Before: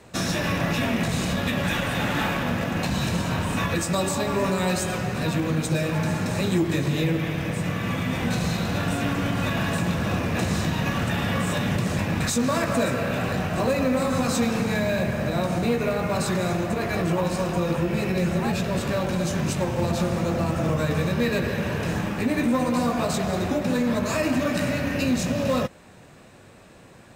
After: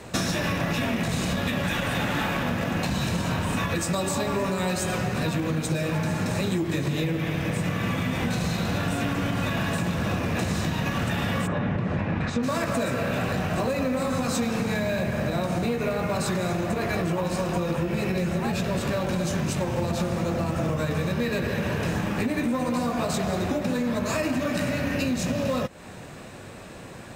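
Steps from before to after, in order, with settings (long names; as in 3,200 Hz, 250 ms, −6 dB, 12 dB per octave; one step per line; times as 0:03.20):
0:11.46–0:12.42: low-pass filter 1,600 Hz → 2,700 Hz 12 dB per octave
downward compressor 6 to 1, threshold −31 dBFS, peak gain reduction 12.5 dB
level +7.5 dB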